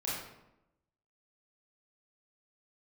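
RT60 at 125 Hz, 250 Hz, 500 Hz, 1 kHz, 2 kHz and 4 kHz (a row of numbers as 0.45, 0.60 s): 1.0, 1.1, 0.95, 0.85, 0.70, 0.55 s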